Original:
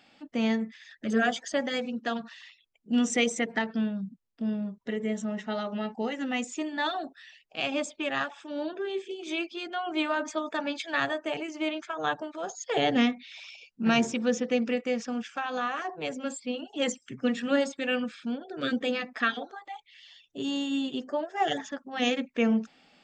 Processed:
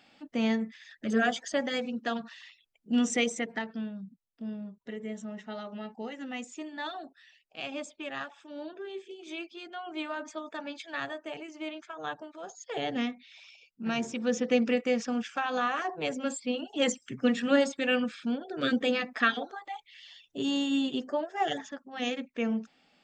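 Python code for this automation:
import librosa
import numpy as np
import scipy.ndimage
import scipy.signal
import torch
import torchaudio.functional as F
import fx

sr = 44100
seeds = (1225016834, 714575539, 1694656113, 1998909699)

y = fx.gain(x, sr, db=fx.line((3.07, -1.0), (3.82, -7.5), (13.98, -7.5), (14.51, 1.5), (20.9, 1.5), (21.9, -5.5)))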